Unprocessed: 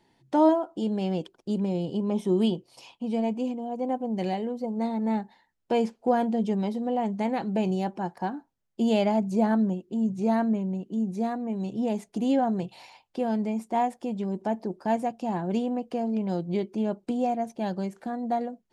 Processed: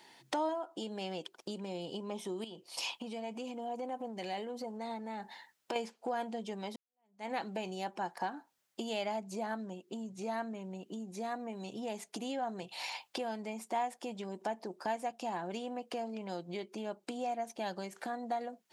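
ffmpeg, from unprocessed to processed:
ffmpeg -i in.wav -filter_complex "[0:a]asettb=1/sr,asplit=3[link_01][link_02][link_03];[link_01]atrim=end=2.444[link_04];[link_02]atrim=start=2.44:end=5.76,asetpts=PTS-STARTPTS,afade=type=in:duration=0.004:curve=qsin,afade=type=out:start_time=3.316:duration=0.004:curve=qsin,acompressor=threshold=-31dB:ratio=6:attack=3.2:release=140:knee=1:detection=peak[link_05];[link_03]atrim=start=5.756[link_06];[link_04][link_05]acrossfade=duration=0.004:curve1=hsin:curve2=qsin[link_07];[link_07][link_06]acrossfade=duration=0.004:curve1=qsin:curve2=hsin,asplit=2[link_08][link_09];[link_08]atrim=end=6.76,asetpts=PTS-STARTPTS,afade=type=out:start_time=6.756:duration=0.004:curve=hsin[link_10];[link_09]atrim=start=6.76,asetpts=PTS-STARTPTS,afade=type=in:duration=0.59:curve=exp[link_11];[link_10][link_11]concat=n=2:v=0:a=1,acompressor=threshold=-41dB:ratio=4,highpass=frequency=1300:poles=1,volume=13dB" out.wav

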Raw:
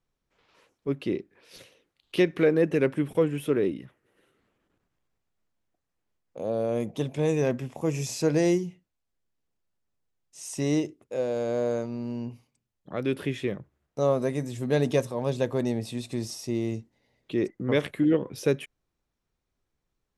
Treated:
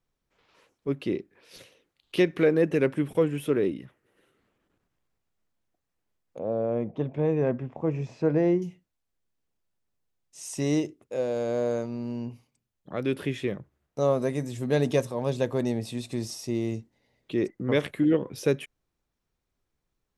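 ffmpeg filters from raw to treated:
ffmpeg -i in.wav -filter_complex "[0:a]asettb=1/sr,asplit=3[link_01][link_02][link_03];[link_01]atrim=end=6.394[link_04];[link_02]atrim=start=6.39:end=8.62,asetpts=PTS-STARTPTS,afade=type=in:duration=0.004:curve=qsin,afade=type=out:start_time=2.226:duration=0.004:curve=qsin,lowpass=1600[link_05];[link_03]atrim=start=8.616[link_06];[link_04][link_05]acrossfade=duration=0.004:curve1=hsin:curve2=qsin[link_07];[link_07][link_06]acrossfade=duration=0.004:curve1=qsin:curve2=hsin" out.wav

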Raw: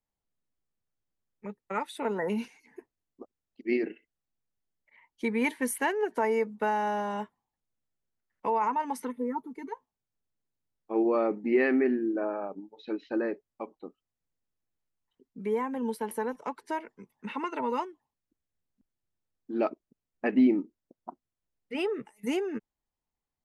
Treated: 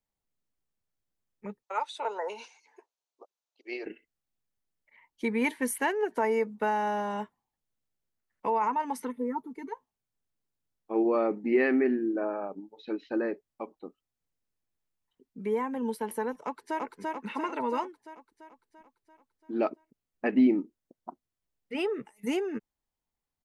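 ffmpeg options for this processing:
ffmpeg -i in.wav -filter_complex "[0:a]asettb=1/sr,asplit=3[link_01][link_02][link_03];[link_01]atrim=end=1.634[link_04];[link_02]atrim=start=1.63:end=3.86,asetpts=PTS-STARTPTS,afade=type=in:duration=0.004:curve=qsin,afade=type=out:start_time=2.226:duration=0.004:curve=qsin,highpass=frequency=490:width=0.5412,highpass=frequency=490:width=1.3066,equalizer=frequency=910:width_type=q:width=4:gain=4,equalizer=frequency=1900:width_type=q:width=4:gain=-9,equalizer=frequency=4000:width_type=q:width=4:gain=4,equalizer=frequency=6200:width_type=q:width=4:gain=5,lowpass=frequency=7800:width=0.5412,lowpass=frequency=7800:width=1.3066[link_05];[link_03]atrim=start=3.856[link_06];[link_04][link_05]acrossfade=duration=0.004:curve1=hsin:curve2=qsin[link_07];[link_07][link_06]acrossfade=duration=0.004:curve1=qsin:curve2=hsin,asplit=2[link_08][link_09];[link_09]afade=type=in:start_time=16.42:duration=0.01,afade=type=out:start_time=16.84:duration=0.01,aecho=0:1:340|680|1020|1360|1700|2040|2380|2720|3060:0.841395|0.504837|0.302902|0.181741|0.109045|0.0654269|0.0392561|0.0235537|0.0141322[link_10];[link_08][link_10]amix=inputs=2:normalize=0" out.wav

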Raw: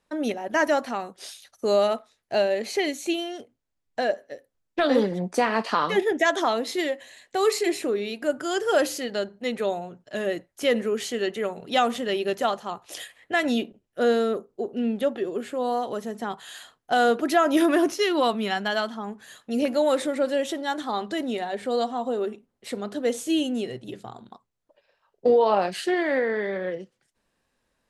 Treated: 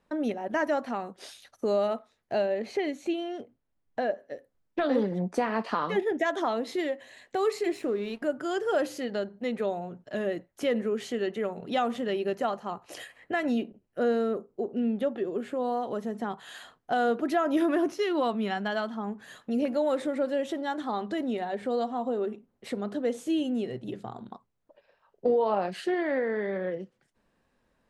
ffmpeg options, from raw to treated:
ffmpeg -i in.wav -filter_complex "[0:a]asettb=1/sr,asplit=3[link_01][link_02][link_03];[link_01]atrim=end=2.464[link_04];[link_02]atrim=start=2.46:end=4.2,asetpts=PTS-STARTPTS,afade=type=in:duration=0.004:curve=qsin,afade=type=out:start_time=1.736:duration=0.004:curve=qsin,highshelf=frequency=5400:gain=-9[link_05];[link_03]atrim=start=4.196[link_06];[link_04][link_05]acrossfade=duration=0.004:curve1=hsin:curve2=qsin[link_07];[link_07][link_06]acrossfade=duration=0.004:curve1=qsin:curve2=hsin,asettb=1/sr,asplit=3[link_08][link_09][link_10];[link_08]atrim=end=7.614[link_11];[link_09]atrim=start=7.61:end=8.22,asetpts=PTS-STARTPTS,afade=type=in:duration=0.004:curve=qsin,afade=type=out:start_time=0.606:duration=0.004:curve=qsin,aeval=exprs='sgn(val(0))*max(abs(val(0))-0.00447,0)':channel_layout=same[link_12];[link_10]atrim=start=8.216[link_13];[link_11][link_12]acrossfade=duration=0.004:curve1=hsin:curve2=qsin[link_14];[link_14][link_13]acrossfade=duration=0.004:curve1=qsin:curve2=hsin,asettb=1/sr,asplit=3[link_15][link_16][link_17];[link_15]atrim=end=12.154[link_18];[link_16]atrim=start=12.15:end=14.79,asetpts=PTS-STARTPTS,afade=type=in:duration=0.004:curve=qsin,afade=type=out:start_time=2.636:duration=0.004:curve=qsin,bandreject=frequency=3500:width=8.6[link_19];[link_17]atrim=start=14.786[link_20];[link_18][link_19]acrossfade=duration=0.004:curve1=hsin:curve2=qsin[link_21];[link_21][link_20]acrossfade=duration=0.004:curve1=qsin:curve2=hsin,equalizer=frequency=200:width_type=o:width=0.77:gain=2.5,acompressor=threshold=-41dB:ratio=1.5,highshelf=frequency=3000:gain=-11,volume=3.5dB" out.wav

